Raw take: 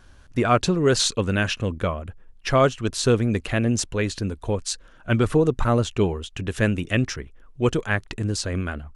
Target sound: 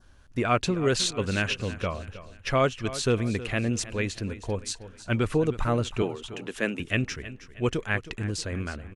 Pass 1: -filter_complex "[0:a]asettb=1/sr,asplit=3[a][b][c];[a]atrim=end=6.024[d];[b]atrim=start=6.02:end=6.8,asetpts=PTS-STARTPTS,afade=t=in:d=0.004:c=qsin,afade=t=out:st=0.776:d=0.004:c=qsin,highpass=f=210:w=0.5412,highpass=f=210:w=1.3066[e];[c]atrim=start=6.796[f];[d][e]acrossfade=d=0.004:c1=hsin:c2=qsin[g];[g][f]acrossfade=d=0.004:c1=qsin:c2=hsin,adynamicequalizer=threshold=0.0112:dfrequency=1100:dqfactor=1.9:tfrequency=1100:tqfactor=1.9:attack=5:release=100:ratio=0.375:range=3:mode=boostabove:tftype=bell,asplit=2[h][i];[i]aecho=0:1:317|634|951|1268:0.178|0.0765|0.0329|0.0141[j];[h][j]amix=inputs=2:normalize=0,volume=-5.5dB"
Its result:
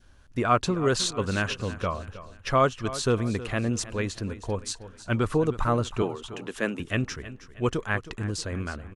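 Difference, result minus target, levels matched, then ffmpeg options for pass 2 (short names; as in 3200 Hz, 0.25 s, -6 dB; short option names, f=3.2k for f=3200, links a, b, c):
1000 Hz band +3.0 dB
-filter_complex "[0:a]asettb=1/sr,asplit=3[a][b][c];[a]atrim=end=6.024[d];[b]atrim=start=6.02:end=6.8,asetpts=PTS-STARTPTS,afade=t=in:d=0.004:c=qsin,afade=t=out:st=0.776:d=0.004:c=qsin,highpass=f=210:w=0.5412,highpass=f=210:w=1.3066[e];[c]atrim=start=6.796[f];[d][e]acrossfade=d=0.004:c1=hsin:c2=qsin[g];[g][f]acrossfade=d=0.004:c1=qsin:c2=hsin,adynamicequalizer=threshold=0.0112:dfrequency=2400:dqfactor=1.9:tfrequency=2400:tqfactor=1.9:attack=5:release=100:ratio=0.375:range=3:mode=boostabove:tftype=bell,asplit=2[h][i];[i]aecho=0:1:317|634|951|1268:0.178|0.0765|0.0329|0.0141[j];[h][j]amix=inputs=2:normalize=0,volume=-5.5dB"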